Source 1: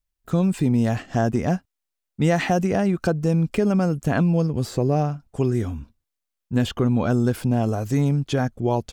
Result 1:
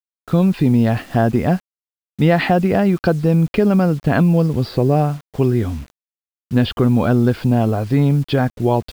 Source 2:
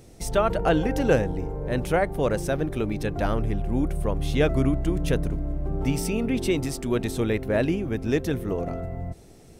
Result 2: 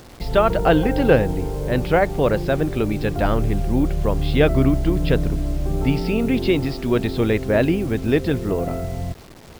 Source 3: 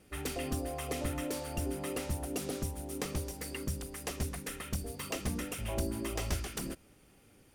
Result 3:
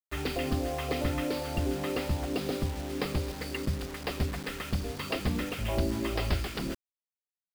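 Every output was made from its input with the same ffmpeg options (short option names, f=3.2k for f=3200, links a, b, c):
-af "aresample=11025,aresample=44100,acrusher=bits=7:mix=0:aa=0.000001,volume=5.5dB"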